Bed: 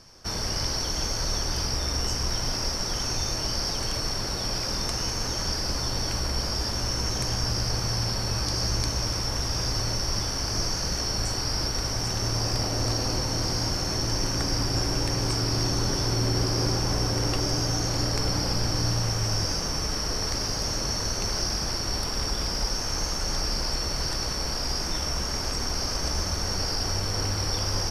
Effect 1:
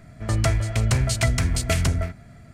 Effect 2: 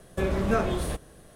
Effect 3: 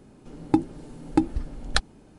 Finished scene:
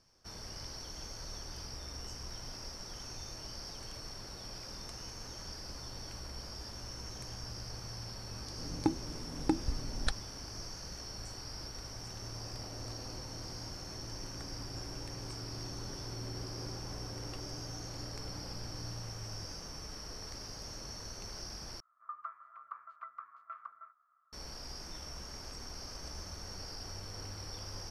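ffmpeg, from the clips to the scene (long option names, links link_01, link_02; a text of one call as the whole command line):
ffmpeg -i bed.wav -i cue0.wav -i cue1.wav -i cue2.wav -filter_complex "[0:a]volume=-17dB[link_01];[3:a]alimiter=limit=-12.5dB:level=0:latency=1:release=253[link_02];[1:a]asuperpass=centerf=1200:order=4:qfactor=6.3[link_03];[link_01]asplit=2[link_04][link_05];[link_04]atrim=end=21.804[link_06];[link_03]atrim=end=2.53,asetpts=PTS-STARTPTS,volume=-3.5dB[link_07];[link_05]atrim=start=24.326[link_08];[link_02]atrim=end=2.18,asetpts=PTS-STARTPTS,volume=-4dB,afade=type=in:duration=0.004:curve=hsin,afade=type=out:start_time=2.176:duration=0.004:curve=hsin,adelay=8320[link_09];[link_06][link_07]acrossfade=duration=0.004:curve1=hsin:curve2=hsin[link_10];[link_10][link_08]acrossfade=duration=0.004:curve1=hsin:curve2=hsin[link_11];[link_11][link_09]amix=inputs=2:normalize=0" out.wav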